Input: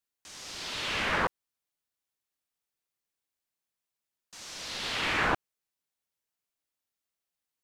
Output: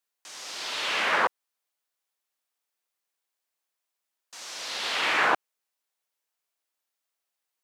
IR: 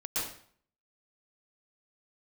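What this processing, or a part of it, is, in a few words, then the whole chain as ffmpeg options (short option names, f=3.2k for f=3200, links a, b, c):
filter by subtraction: -filter_complex "[0:a]asplit=2[a][b];[b]lowpass=710,volume=-1[c];[a][c]amix=inputs=2:normalize=0,highpass=f=180:p=1,volume=3.5dB"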